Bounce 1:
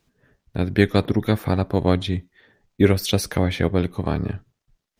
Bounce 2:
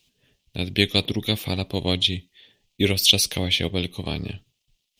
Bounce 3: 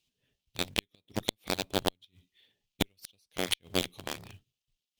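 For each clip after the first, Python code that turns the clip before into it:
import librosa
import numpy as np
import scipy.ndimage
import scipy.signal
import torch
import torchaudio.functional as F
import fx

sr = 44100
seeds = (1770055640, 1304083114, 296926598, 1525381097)

y1 = fx.high_shelf_res(x, sr, hz=2100.0, db=11.5, q=3.0)
y1 = y1 * librosa.db_to_amplitude(-5.5)
y2 = fx.quant_float(y1, sr, bits=2)
y2 = fx.gate_flip(y2, sr, shuts_db=-12.0, range_db=-35)
y2 = fx.cheby_harmonics(y2, sr, harmonics=(5, 7), levels_db=(-43, -15), full_scale_db=-6.0)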